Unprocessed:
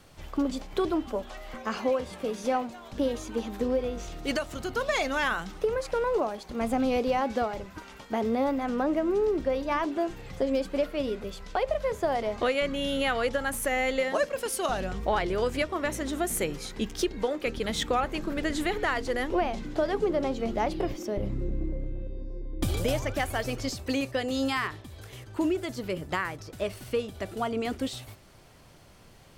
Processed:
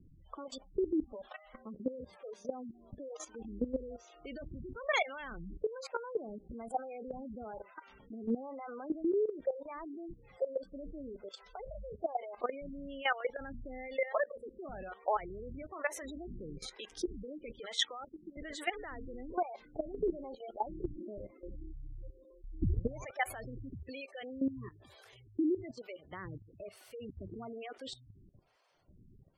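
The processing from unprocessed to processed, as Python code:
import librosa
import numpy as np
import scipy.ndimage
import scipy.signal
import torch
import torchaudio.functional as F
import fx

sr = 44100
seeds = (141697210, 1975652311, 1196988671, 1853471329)

y = fx.harmonic_tremolo(x, sr, hz=1.1, depth_pct=100, crossover_hz=460.0)
y = fx.spec_gate(y, sr, threshold_db=-15, keep='strong')
y = fx.weighting(y, sr, curve='ITU-R 468', at=(17.79, 18.37))
y = fx.level_steps(y, sr, step_db=15)
y = F.gain(torch.from_numpy(y), 1.0).numpy()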